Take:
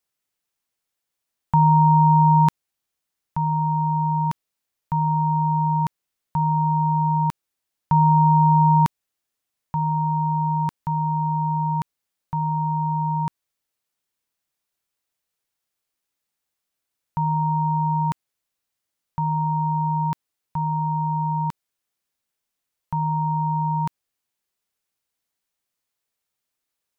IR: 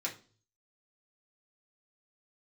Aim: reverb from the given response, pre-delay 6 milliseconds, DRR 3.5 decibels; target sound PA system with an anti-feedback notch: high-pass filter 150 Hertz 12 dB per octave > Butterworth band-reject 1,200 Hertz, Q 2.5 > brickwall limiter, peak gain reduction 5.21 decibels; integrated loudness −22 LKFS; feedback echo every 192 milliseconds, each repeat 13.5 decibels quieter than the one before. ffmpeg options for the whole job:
-filter_complex "[0:a]aecho=1:1:192|384:0.211|0.0444,asplit=2[link_01][link_02];[1:a]atrim=start_sample=2205,adelay=6[link_03];[link_02][link_03]afir=irnorm=-1:irlink=0,volume=-6dB[link_04];[link_01][link_04]amix=inputs=2:normalize=0,highpass=150,asuperstop=centerf=1200:order=8:qfactor=2.5,volume=-2dB,alimiter=limit=-12.5dB:level=0:latency=1"

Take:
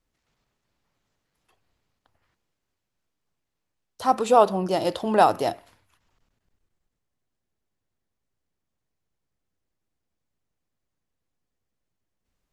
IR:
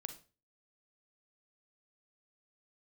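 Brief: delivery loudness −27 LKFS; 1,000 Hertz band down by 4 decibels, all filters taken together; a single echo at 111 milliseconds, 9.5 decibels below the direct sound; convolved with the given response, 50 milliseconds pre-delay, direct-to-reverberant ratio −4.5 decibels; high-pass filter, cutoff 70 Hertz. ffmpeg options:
-filter_complex "[0:a]highpass=70,equalizer=frequency=1000:width_type=o:gain=-6,aecho=1:1:111:0.335,asplit=2[link_01][link_02];[1:a]atrim=start_sample=2205,adelay=50[link_03];[link_02][link_03]afir=irnorm=-1:irlink=0,volume=8dB[link_04];[link_01][link_04]amix=inputs=2:normalize=0,volume=-9.5dB"

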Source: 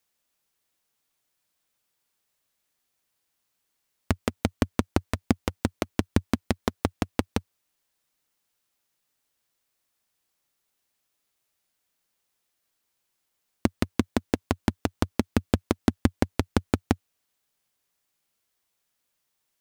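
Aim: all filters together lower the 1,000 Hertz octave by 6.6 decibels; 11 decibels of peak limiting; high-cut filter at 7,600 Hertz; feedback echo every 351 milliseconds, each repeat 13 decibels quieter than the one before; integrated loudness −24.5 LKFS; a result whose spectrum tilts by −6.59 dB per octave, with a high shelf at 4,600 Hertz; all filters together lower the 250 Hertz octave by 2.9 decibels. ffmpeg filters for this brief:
ffmpeg -i in.wav -af "lowpass=7600,equalizer=frequency=250:width_type=o:gain=-3,equalizer=frequency=1000:width_type=o:gain=-8.5,highshelf=frequency=4600:gain=-6.5,alimiter=limit=-17dB:level=0:latency=1,aecho=1:1:351|702|1053:0.224|0.0493|0.0108,volume=14.5dB" out.wav

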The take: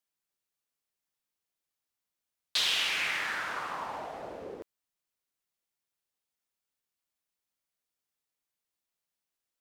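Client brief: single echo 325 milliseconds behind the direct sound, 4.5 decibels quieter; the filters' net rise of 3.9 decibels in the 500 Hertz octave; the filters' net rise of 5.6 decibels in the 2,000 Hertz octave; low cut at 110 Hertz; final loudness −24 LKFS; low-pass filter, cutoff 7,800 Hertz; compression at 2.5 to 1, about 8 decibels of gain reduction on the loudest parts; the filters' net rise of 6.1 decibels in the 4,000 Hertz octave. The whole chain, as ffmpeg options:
ffmpeg -i in.wav -af "highpass=110,lowpass=7800,equalizer=frequency=500:width_type=o:gain=4.5,equalizer=frequency=2000:width_type=o:gain=5,equalizer=frequency=4000:width_type=o:gain=6,acompressor=threshold=-31dB:ratio=2.5,aecho=1:1:325:0.596,volume=6.5dB" out.wav

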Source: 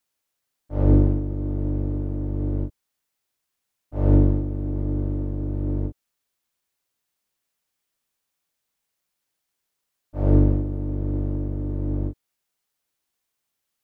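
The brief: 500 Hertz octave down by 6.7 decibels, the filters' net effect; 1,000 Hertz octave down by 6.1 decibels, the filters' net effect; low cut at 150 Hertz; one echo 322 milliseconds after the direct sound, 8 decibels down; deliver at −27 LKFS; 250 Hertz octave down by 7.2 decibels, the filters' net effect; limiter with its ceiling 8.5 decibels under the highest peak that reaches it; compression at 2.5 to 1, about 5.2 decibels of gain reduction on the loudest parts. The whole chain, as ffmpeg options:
ffmpeg -i in.wav -af "highpass=150,equalizer=frequency=250:width_type=o:gain=-6.5,equalizer=frequency=500:width_type=o:gain=-5,equalizer=frequency=1000:width_type=o:gain=-5.5,acompressor=threshold=-28dB:ratio=2.5,alimiter=level_in=4dB:limit=-24dB:level=0:latency=1,volume=-4dB,aecho=1:1:322:0.398,volume=11.5dB" out.wav

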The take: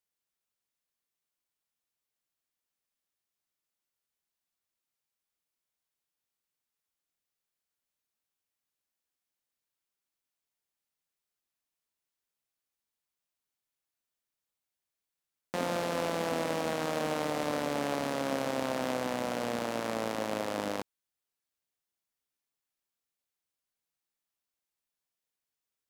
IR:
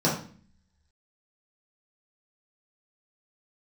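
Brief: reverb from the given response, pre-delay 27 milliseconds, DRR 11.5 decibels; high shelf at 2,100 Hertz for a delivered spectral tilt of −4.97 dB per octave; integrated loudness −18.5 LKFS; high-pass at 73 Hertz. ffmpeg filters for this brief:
-filter_complex "[0:a]highpass=73,highshelf=frequency=2100:gain=-6.5,asplit=2[link_01][link_02];[1:a]atrim=start_sample=2205,adelay=27[link_03];[link_02][link_03]afir=irnorm=-1:irlink=0,volume=-25.5dB[link_04];[link_01][link_04]amix=inputs=2:normalize=0,volume=14.5dB"

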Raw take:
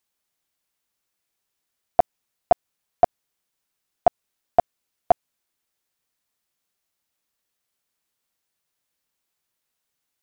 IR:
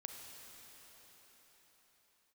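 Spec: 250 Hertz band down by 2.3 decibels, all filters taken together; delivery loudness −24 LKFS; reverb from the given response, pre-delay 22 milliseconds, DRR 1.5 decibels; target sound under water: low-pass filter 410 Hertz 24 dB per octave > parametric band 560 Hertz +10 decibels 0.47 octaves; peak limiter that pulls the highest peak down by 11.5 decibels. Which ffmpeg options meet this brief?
-filter_complex "[0:a]equalizer=frequency=250:width_type=o:gain=-3.5,alimiter=limit=-17.5dB:level=0:latency=1,asplit=2[link_01][link_02];[1:a]atrim=start_sample=2205,adelay=22[link_03];[link_02][link_03]afir=irnorm=-1:irlink=0,volume=2dB[link_04];[link_01][link_04]amix=inputs=2:normalize=0,lowpass=frequency=410:width=0.5412,lowpass=frequency=410:width=1.3066,equalizer=frequency=560:width_type=o:width=0.47:gain=10,volume=23.5dB"

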